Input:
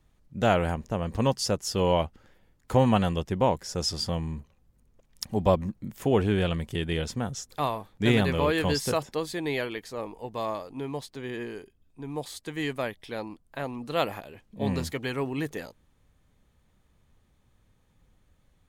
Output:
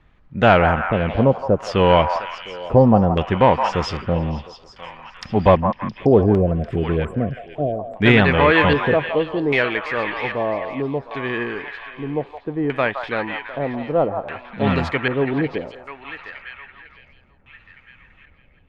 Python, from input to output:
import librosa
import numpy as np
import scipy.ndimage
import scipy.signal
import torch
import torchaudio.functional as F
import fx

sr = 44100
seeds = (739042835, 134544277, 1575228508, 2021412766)

p1 = fx.peak_eq(x, sr, hz=1700.0, db=5.0, octaves=2.0)
p2 = fx.fold_sine(p1, sr, drive_db=7, ceiling_db=-5.0)
p3 = p1 + F.gain(torch.from_numpy(p2), -11.0).numpy()
p4 = fx.brickwall_bandstop(p3, sr, low_hz=740.0, high_hz=7300.0, at=(6.34, 7.79))
p5 = p4 + fx.echo_banded(p4, sr, ms=707, feedback_pct=55, hz=2300.0, wet_db=-8.5, dry=0)
p6 = fx.filter_lfo_lowpass(p5, sr, shape='square', hz=0.63, low_hz=590.0, high_hz=2600.0, q=1.1)
p7 = fx.echo_stepped(p6, sr, ms=167, hz=950.0, octaves=0.7, feedback_pct=70, wet_db=-4.0)
y = F.gain(torch.from_numpy(p7), 2.5).numpy()